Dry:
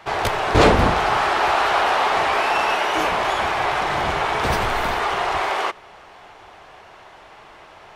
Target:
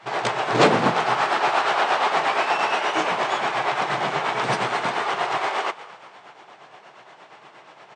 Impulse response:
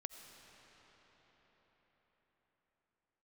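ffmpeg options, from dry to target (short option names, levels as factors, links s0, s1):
-filter_complex "[0:a]afftfilt=real='re*between(b*sr/4096,110,9100)':imag='im*between(b*sr/4096,110,9100)':win_size=4096:overlap=0.75,asplit=5[s0][s1][s2][s3][s4];[s1]adelay=208,afreqshift=67,volume=0.133[s5];[s2]adelay=416,afreqshift=134,volume=0.0617[s6];[s3]adelay=624,afreqshift=201,volume=0.0282[s7];[s4]adelay=832,afreqshift=268,volume=0.013[s8];[s0][s5][s6][s7][s8]amix=inputs=5:normalize=0,tremolo=f=8.5:d=0.53"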